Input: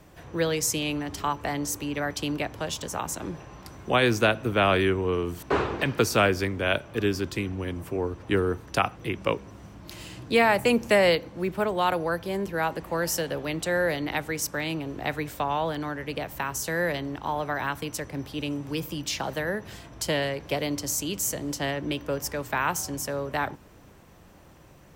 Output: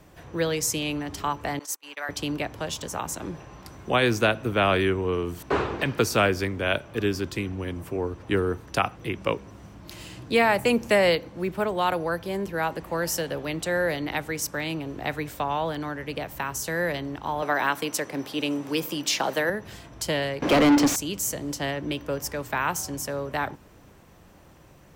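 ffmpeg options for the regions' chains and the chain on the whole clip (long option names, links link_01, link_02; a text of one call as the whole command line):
ffmpeg -i in.wav -filter_complex "[0:a]asettb=1/sr,asplit=3[link_01][link_02][link_03];[link_01]atrim=end=1.594[link_04];[link_02]atrim=start=1.59:end=2.09,asetpts=PTS-STARTPTS,afade=type=in:duration=0.004:curve=qsin,afade=type=out:start_time=0.496:duration=0.004:curve=qsin,agate=range=-27dB:threshold=-32dB:ratio=16:release=100:detection=peak,highpass=870[link_05];[link_03]atrim=start=2.086[link_06];[link_04][link_05]acrossfade=duration=0.004:curve1=hsin:curve2=qsin[link_07];[link_07][link_06]acrossfade=duration=0.004:curve1=qsin:curve2=hsin,asettb=1/sr,asplit=3[link_08][link_09][link_10];[link_08]atrim=end=17.424[link_11];[link_09]atrim=start=17.42:end=19.5,asetpts=PTS-STARTPTS,afade=type=in:duration=0.004:curve=qsin,afade=type=out:start_time=2.076:duration=0.004:curve=qsin,highpass=250,acontrast=36[link_12];[link_10]atrim=start=19.496[link_13];[link_11][link_12]acrossfade=duration=0.004:curve1=hsin:curve2=qsin[link_14];[link_14][link_13]acrossfade=duration=0.004:curve1=qsin:curve2=hsin,asettb=1/sr,asplit=3[link_15][link_16][link_17];[link_15]atrim=end=20.424[link_18];[link_16]atrim=start=20.42:end=20.96,asetpts=PTS-STARTPTS,afade=type=in:duration=0.004:curve=qsin,afade=type=out:start_time=0.536:duration=0.004:curve=qsin,equalizer=frequency=260:width=1.5:gain=13.5,asplit=2[link_19][link_20];[link_20]highpass=frequency=720:poles=1,volume=30dB,asoftclip=type=tanh:threshold=-11dB[link_21];[link_19][link_21]amix=inputs=2:normalize=0,lowpass=frequency=2200:poles=1,volume=-6dB[link_22];[link_17]atrim=start=20.956[link_23];[link_18][link_22]acrossfade=duration=0.004:curve1=hsin:curve2=qsin[link_24];[link_24][link_23]acrossfade=duration=0.004:curve1=qsin:curve2=hsin" out.wav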